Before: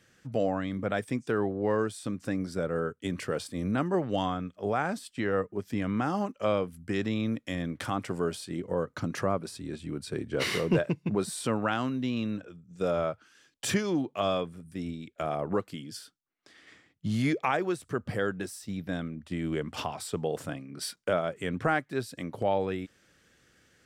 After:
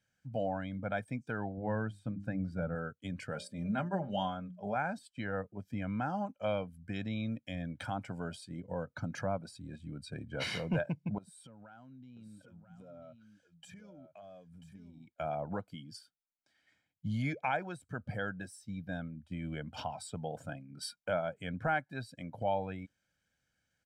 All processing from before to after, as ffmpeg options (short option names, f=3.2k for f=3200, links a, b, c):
-filter_complex "[0:a]asettb=1/sr,asplit=3[a][b][c];[a]atrim=end=1.574[d];[b]atrim=start=1.57:end=2.75,asetpts=PTS-STARTPTS,afade=t=in:d=0.004:c=qsin,afade=t=out:st=1.176:d=0.004:c=qsin,bass=f=250:g=6,treble=f=4k:g=-8,bandreject=f=50:t=h:w=6,bandreject=f=100:t=h:w=6,bandreject=f=150:t=h:w=6,bandreject=f=200:t=h:w=6,bandreject=f=250:t=h:w=6,bandreject=f=300:t=h:w=6,bandreject=f=350:t=h:w=6[e];[c]atrim=start=2.746[f];[d][e]acrossfade=d=0.004:c1=hsin:c2=qsin[g];[g][f]acrossfade=d=0.004:c1=qsin:c2=hsin,asettb=1/sr,asplit=3[h][i][j];[h]atrim=end=3.334[k];[i]atrim=start=3.33:end=4.76,asetpts=PTS-STARTPTS,afade=t=in:d=0.004:c=qsin,afade=t=out:st=1.426:d=0.004:c=qsin,bandreject=f=60:t=h:w=6,bandreject=f=120:t=h:w=6,bandreject=f=180:t=h:w=6,bandreject=f=240:t=h:w=6,bandreject=f=300:t=h:w=6,bandreject=f=360:t=h:w=6,bandreject=f=420:t=h:w=6,bandreject=f=480:t=h:w=6,bandreject=f=540:t=h:w=6,bandreject=f=600:t=h:w=6,aecho=1:1:5:0.52,atrim=end_sample=63063[l];[j]atrim=start=4.756[m];[k][l]acrossfade=d=0.004:c1=hsin:c2=qsin[n];[n][m]acrossfade=d=0.004:c1=qsin:c2=hsin,asettb=1/sr,asplit=3[o][p][q];[o]atrim=end=11.184[r];[p]atrim=start=11.18:end=15.13,asetpts=PTS-STARTPTS,afade=t=in:d=0.004:c=qsin,afade=t=out:st=3.946:d=0.004:c=qsin,acompressor=threshold=-43dB:ratio=6:attack=3.2:release=140:knee=1:detection=peak,aecho=1:1:988:0.447,atrim=end_sample=174195[s];[q]atrim=start=15.126[t];[r][s]acrossfade=d=0.004:c1=hsin:c2=qsin[u];[u][t]acrossfade=d=0.004:c1=qsin:c2=hsin,afftdn=nr=12:nf=-44,aecho=1:1:1.3:0.71,volume=-7.5dB"